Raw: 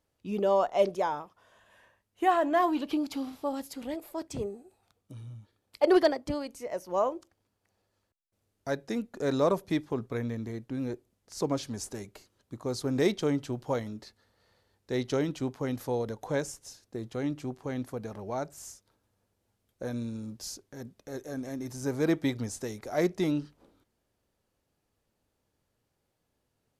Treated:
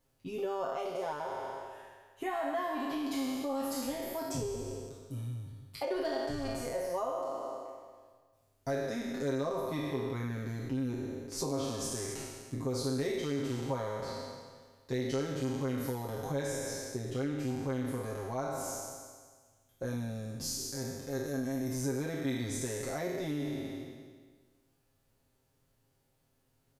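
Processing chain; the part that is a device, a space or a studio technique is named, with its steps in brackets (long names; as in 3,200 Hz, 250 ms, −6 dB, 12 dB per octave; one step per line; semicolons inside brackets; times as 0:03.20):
peak hold with a decay on every bin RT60 1.57 s
ASMR close-microphone chain (low-shelf EQ 110 Hz +6.5 dB; downward compressor 4 to 1, threshold −33 dBFS, peak gain reduction 16 dB; high-shelf EQ 11,000 Hz +7 dB)
comb filter 7.5 ms, depth 89%
level −3 dB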